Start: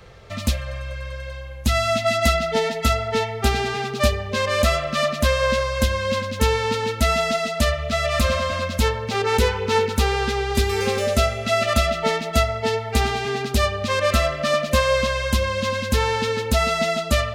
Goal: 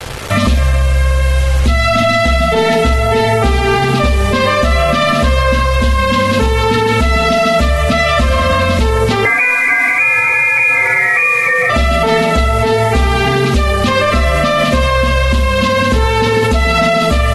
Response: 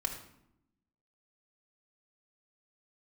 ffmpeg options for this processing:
-filter_complex "[0:a]asoftclip=type=tanh:threshold=-8.5dB,aemphasis=mode=reproduction:type=50fm,aecho=1:1:16|59:0.422|0.422,asettb=1/sr,asplit=3[a][b][c];[a]atrim=end=9.254[d];[b]atrim=start=9.25:end=11.7,asetpts=PTS-STARTPTS,afade=t=in:d=0.004:c=qsin,afade=t=out:st=2.446:d=0.004:c=qsin,lowpass=f=2.1k:t=q:w=0.5098,lowpass=f=2.1k:t=q:w=0.6013,lowpass=f=2.1k:t=q:w=0.9,lowpass=f=2.1k:t=q:w=2.563,afreqshift=-2500[e];[c]atrim=start=11.696[f];[d][e]acrossfade=d=0.004:c1=hsin:c2=qsin[g];[g][f]acrossfade=d=0.004:c1=qsin:c2=hsin,asplit=2[h][i];[i]adelay=46,volume=-8.5dB[j];[h][j]amix=inputs=2:normalize=0,bandreject=f=185.4:t=h:w=4,bandreject=f=370.8:t=h:w=4,bandreject=f=556.2:t=h:w=4,bandreject=f=741.6:t=h:w=4,bandreject=f=927:t=h:w=4,bandreject=f=1.1124k:t=h:w=4,bandreject=f=1.2978k:t=h:w=4,bandreject=f=1.4832k:t=h:w=4,bandreject=f=1.6686k:t=h:w=4,acompressor=threshold=-20dB:ratio=12,acrusher=bits=6:mix=0:aa=0.000001,acontrast=52,adynamicequalizer=threshold=0.0126:dfrequency=230:dqfactor=2.5:tfrequency=230:tqfactor=2.5:attack=5:release=100:ratio=0.375:range=1.5:mode=boostabove:tftype=bell,alimiter=level_in=16dB:limit=-1dB:release=50:level=0:latency=1,volume=-4dB" -ar 48000 -c:a aac -b:a 32k

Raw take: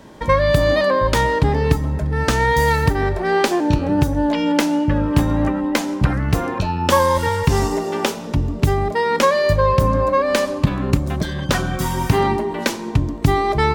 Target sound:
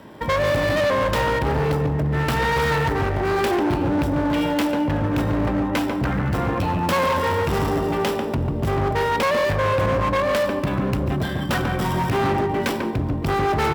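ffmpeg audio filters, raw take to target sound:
-filter_complex "[0:a]acrossover=split=3700[a][b];[b]acrusher=samples=20:mix=1:aa=0.000001[c];[a][c]amix=inputs=2:normalize=0,aemphasis=mode=production:type=cd,asplit=2[d][e];[e]adelay=144,lowpass=f=1.1k:p=1,volume=-4.5dB,asplit=2[f][g];[g]adelay=144,lowpass=f=1.1k:p=1,volume=0.52,asplit=2[h][i];[i]adelay=144,lowpass=f=1.1k:p=1,volume=0.52,asplit=2[j][k];[k]adelay=144,lowpass=f=1.1k:p=1,volume=0.52,asplit=2[l][m];[m]adelay=144,lowpass=f=1.1k:p=1,volume=0.52,asplit=2[n][o];[o]adelay=144,lowpass=f=1.1k:p=1,volume=0.52,asplit=2[p][q];[q]adelay=144,lowpass=f=1.1k:p=1,volume=0.52[r];[d][f][h][j][l][n][p][r]amix=inputs=8:normalize=0,volume=17.5dB,asoftclip=hard,volume=-17.5dB,highpass=64"

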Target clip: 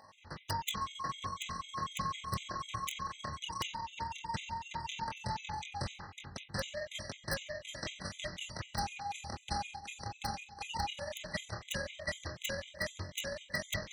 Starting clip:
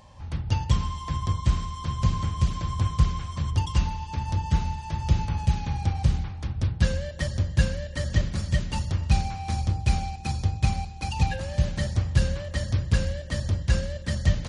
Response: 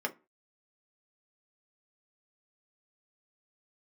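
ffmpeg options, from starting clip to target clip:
-filter_complex "[0:a]highpass=f=1.1k:p=1,highshelf=f=6.2k:g=-11.5,tremolo=f=21:d=0.947,asetrate=45864,aresample=44100,flanger=delay=20:depth=7.8:speed=0.14,aeval=exprs='(mod(39.8*val(0)+1,2)-1)/39.8':c=same,asplit=2[a][b];[1:a]atrim=start_sample=2205[c];[b][c]afir=irnorm=-1:irlink=0,volume=-19.5dB[d];[a][d]amix=inputs=2:normalize=0,afftfilt=real='re*gt(sin(2*PI*4*pts/sr)*(1-2*mod(floor(b*sr/1024/2000),2)),0)':imag='im*gt(sin(2*PI*4*pts/sr)*(1-2*mod(floor(b*sr/1024/2000),2)),0)':win_size=1024:overlap=0.75,volume=9.5dB"

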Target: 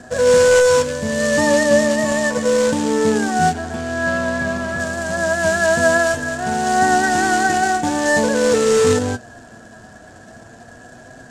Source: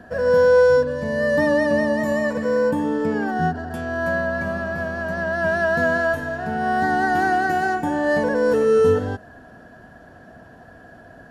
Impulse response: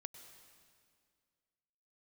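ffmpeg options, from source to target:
-filter_complex "[0:a]acrusher=bits=3:mode=log:mix=0:aa=0.000001,flanger=delay=7.8:depth=1.8:regen=53:speed=0.45:shape=triangular,asettb=1/sr,asplit=3[a][b][c];[a]atrim=end=3.534[d];[b]atrim=start=3.53:end=4.8,asetpts=PTS-STARTPTS,afade=t=in:d=0.004:c=qsin,afade=t=out:st=1.266:d=0.004:c=qsin,acrossover=split=4400[e][f];[f]acompressor=threshold=-50dB:ratio=4:attack=1:release=60[g];[e][g]amix=inputs=2:normalize=0[h];[c]atrim=start=4.796[i];[d][h]acrossfade=d=0.004:c1=hsin:c2=qsin[j];[j][i]acrossfade=d=0.004:c1=qsin:c2=hsin,lowpass=f=7.5k:t=q:w=2.9,volume=7.5dB"

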